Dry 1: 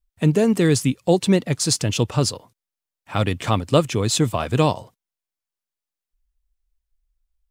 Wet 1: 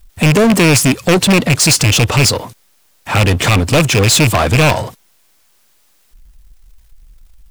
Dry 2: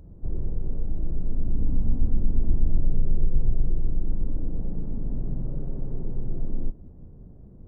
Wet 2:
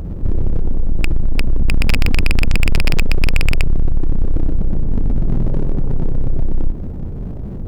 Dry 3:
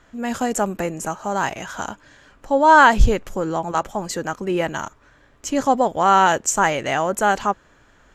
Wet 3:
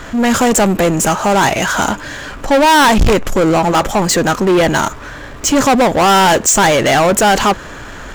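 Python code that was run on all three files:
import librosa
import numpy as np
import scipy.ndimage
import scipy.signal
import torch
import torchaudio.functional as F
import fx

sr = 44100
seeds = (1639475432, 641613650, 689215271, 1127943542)

y = fx.rattle_buzz(x, sr, strikes_db=-21.0, level_db=-10.0)
y = fx.power_curve(y, sr, exponent=0.7)
y = 10.0 ** (-16.0 / 20.0) * np.tanh(y / 10.0 ** (-16.0 / 20.0))
y = y * librosa.db_to_amplitude(9.0)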